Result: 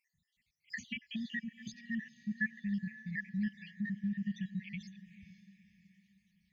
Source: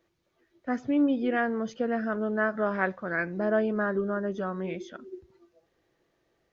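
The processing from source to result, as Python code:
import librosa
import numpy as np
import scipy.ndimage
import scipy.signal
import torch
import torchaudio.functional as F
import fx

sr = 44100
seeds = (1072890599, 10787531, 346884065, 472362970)

p1 = fx.spec_dropout(x, sr, seeds[0], share_pct=64)
p2 = fx.brickwall_bandstop(p1, sr, low_hz=230.0, high_hz=1700.0)
p3 = fx.low_shelf(p2, sr, hz=70.0, db=-6.0)
p4 = p3 + fx.echo_diffused(p3, sr, ms=503, feedback_pct=43, wet_db=-15.0, dry=0)
p5 = fx.band_squash(p4, sr, depth_pct=100, at=(0.7, 1.68))
y = p5 * librosa.db_to_amplitude(2.0)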